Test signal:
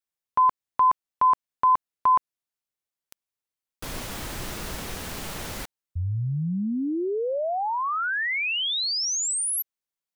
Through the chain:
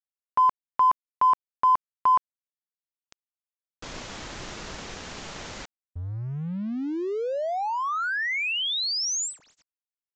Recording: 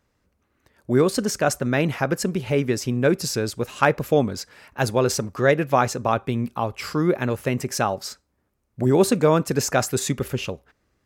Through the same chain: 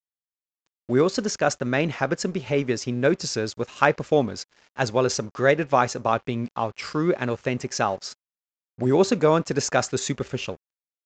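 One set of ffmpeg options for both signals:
-af "lowshelf=f=190:g=-5.5,aeval=exprs='sgn(val(0))*max(abs(val(0))-0.00473,0)':c=same,aresample=16000,aresample=44100"

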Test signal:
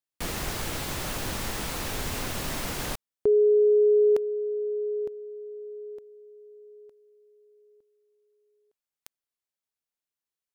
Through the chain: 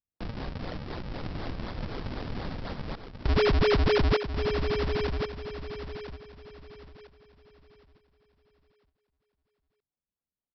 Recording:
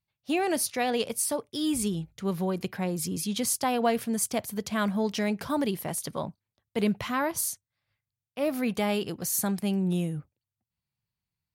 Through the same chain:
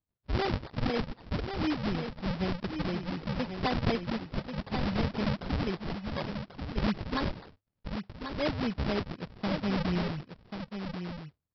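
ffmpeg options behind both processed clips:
-af "aresample=11025,acrusher=samples=18:mix=1:aa=0.000001:lfo=1:lforange=28.8:lforate=4,aresample=44100,aecho=1:1:1088:0.422,volume=-3dB"

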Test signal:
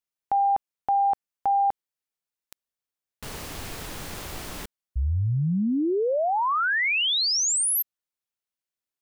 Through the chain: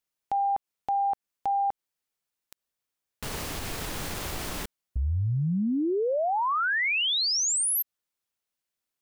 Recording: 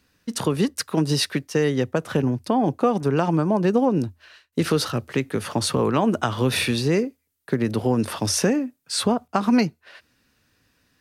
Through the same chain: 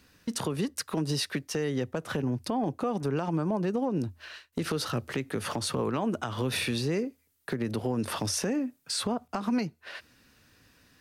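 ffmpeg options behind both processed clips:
-af "acompressor=threshold=-29dB:ratio=4:attack=0.14:release=365:knee=1:detection=peak,volume=4dB"

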